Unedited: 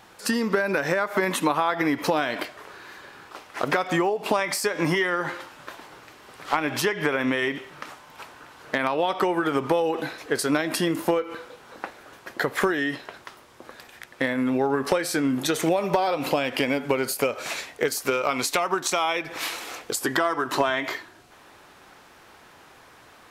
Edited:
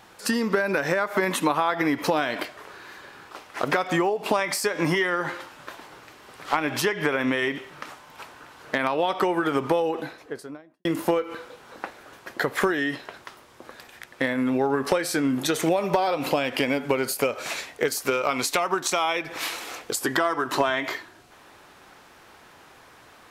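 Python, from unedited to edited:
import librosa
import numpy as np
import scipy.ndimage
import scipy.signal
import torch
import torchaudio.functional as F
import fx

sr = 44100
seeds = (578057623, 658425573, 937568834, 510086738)

y = fx.studio_fade_out(x, sr, start_s=9.63, length_s=1.22)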